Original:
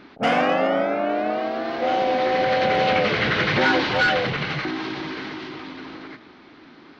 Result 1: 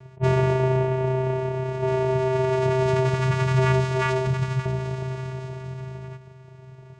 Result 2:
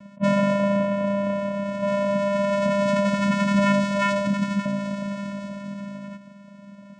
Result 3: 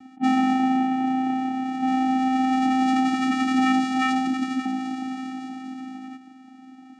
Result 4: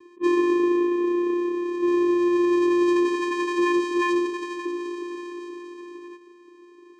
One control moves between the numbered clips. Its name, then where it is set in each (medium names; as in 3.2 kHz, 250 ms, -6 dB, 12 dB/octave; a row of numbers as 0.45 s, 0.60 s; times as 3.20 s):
vocoder, frequency: 130 Hz, 200 Hz, 260 Hz, 350 Hz